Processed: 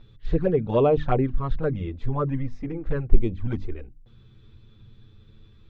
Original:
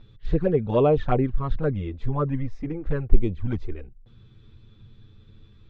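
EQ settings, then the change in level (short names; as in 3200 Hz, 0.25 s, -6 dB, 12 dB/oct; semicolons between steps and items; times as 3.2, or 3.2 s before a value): notches 50/100/150/200/250/300 Hz; 0.0 dB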